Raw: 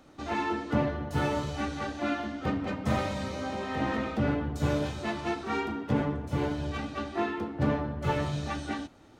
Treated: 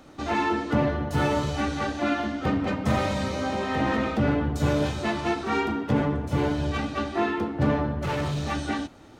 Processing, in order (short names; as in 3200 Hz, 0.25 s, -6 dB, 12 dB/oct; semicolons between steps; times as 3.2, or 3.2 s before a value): in parallel at +0.5 dB: limiter -23 dBFS, peak gain reduction 9.5 dB; 8.01–8.52 on the sum: hard clip -24.5 dBFS, distortion -19 dB